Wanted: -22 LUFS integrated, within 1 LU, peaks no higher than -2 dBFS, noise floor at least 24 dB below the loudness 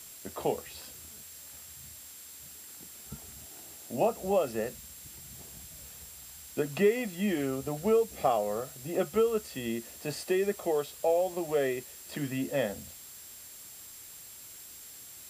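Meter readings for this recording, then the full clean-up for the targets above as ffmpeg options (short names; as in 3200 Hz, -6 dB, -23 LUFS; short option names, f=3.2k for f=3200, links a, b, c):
steady tone 7500 Hz; tone level -52 dBFS; noise floor -48 dBFS; noise floor target -55 dBFS; loudness -31.0 LUFS; peak -13.5 dBFS; loudness target -22.0 LUFS
-> -af "bandreject=f=7.5k:w=30"
-af "afftdn=nr=7:nf=-48"
-af "volume=9dB"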